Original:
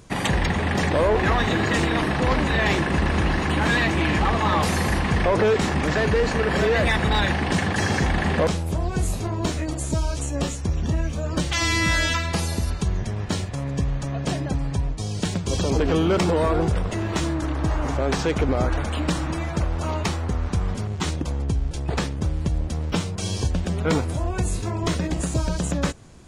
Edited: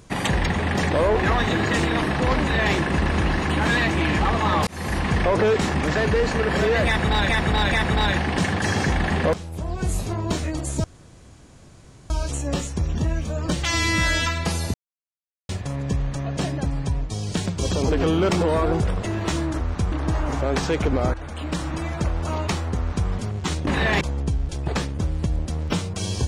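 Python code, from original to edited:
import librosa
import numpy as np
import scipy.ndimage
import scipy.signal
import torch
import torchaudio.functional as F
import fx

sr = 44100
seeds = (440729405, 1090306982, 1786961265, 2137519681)

y = fx.edit(x, sr, fx.duplicate(start_s=2.4, length_s=0.34, to_s=21.23),
    fx.fade_in_span(start_s=4.67, length_s=0.48, curve='qsin'),
    fx.repeat(start_s=6.86, length_s=0.43, count=3),
    fx.fade_in_from(start_s=8.48, length_s=0.61, floor_db=-12.5),
    fx.insert_room_tone(at_s=9.98, length_s=1.26),
    fx.silence(start_s=12.62, length_s=0.75),
    fx.fade_in_from(start_s=18.7, length_s=0.98, curve='qsin', floor_db=-13.0),
    fx.duplicate(start_s=20.34, length_s=0.32, to_s=17.48), tone=tone)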